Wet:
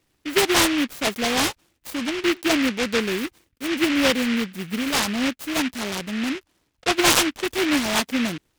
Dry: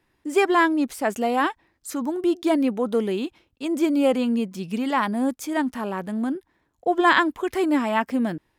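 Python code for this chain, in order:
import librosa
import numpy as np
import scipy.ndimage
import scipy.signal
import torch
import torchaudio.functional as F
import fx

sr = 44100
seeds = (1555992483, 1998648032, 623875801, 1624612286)

y = fx.noise_mod_delay(x, sr, seeds[0], noise_hz=2100.0, depth_ms=0.24)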